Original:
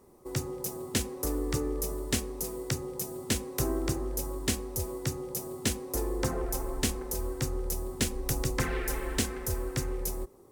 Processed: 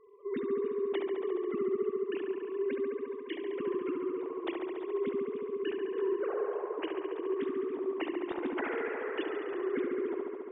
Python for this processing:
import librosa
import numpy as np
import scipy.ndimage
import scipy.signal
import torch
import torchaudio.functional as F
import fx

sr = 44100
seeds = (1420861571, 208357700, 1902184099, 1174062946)

p1 = fx.sine_speech(x, sr)
p2 = fx.rider(p1, sr, range_db=10, speed_s=2.0)
p3 = p2 + fx.echo_wet_lowpass(p2, sr, ms=70, feedback_pct=82, hz=2100.0, wet_db=-3.5, dry=0)
y = p3 * 10.0 ** (-6.0 / 20.0)